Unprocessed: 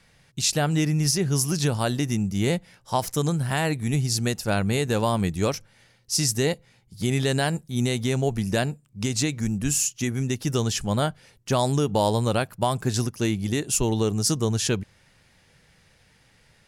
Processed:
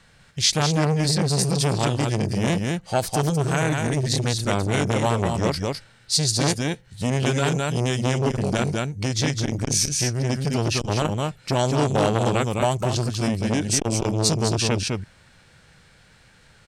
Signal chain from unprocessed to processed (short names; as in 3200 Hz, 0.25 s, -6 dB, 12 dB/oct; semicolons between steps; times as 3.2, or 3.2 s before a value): on a send: echo 0.207 s -4.5 dB; on the sum: formant shift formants -3 st; core saturation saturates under 940 Hz; gain +4 dB